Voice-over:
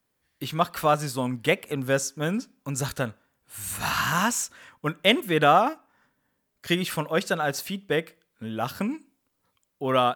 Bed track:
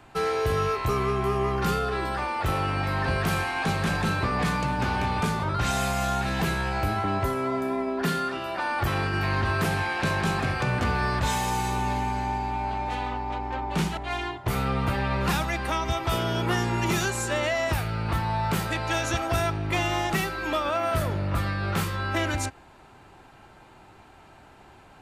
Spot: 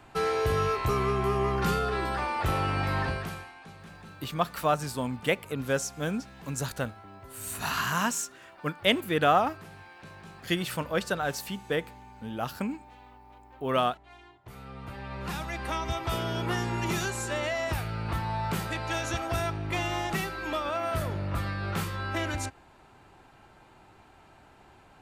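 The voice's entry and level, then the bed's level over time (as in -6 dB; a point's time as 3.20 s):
3.80 s, -4.0 dB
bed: 3.00 s -1.5 dB
3.60 s -22 dB
14.38 s -22 dB
15.71 s -4.5 dB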